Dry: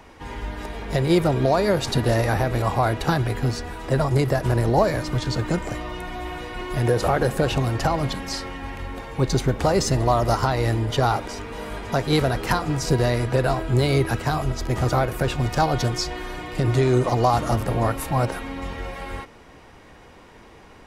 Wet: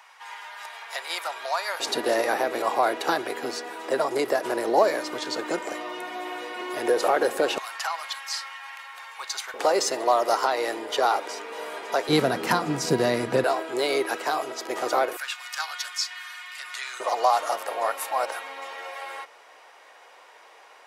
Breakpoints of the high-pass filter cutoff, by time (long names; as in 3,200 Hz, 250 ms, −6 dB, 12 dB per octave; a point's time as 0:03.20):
high-pass filter 24 dB per octave
870 Hz
from 0:01.80 330 Hz
from 0:07.58 1,000 Hz
from 0:09.54 390 Hz
from 0:12.09 180 Hz
from 0:13.44 370 Hz
from 0:15.17 1,300 Hz
from 0:17.00 560 Hz